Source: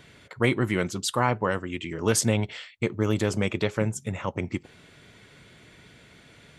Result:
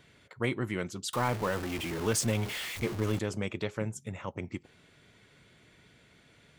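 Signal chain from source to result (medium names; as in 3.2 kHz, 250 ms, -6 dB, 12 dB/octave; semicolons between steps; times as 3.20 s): 1.13–3.19 s: jump at every zero crossing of -25 dBFS; trim -8 dB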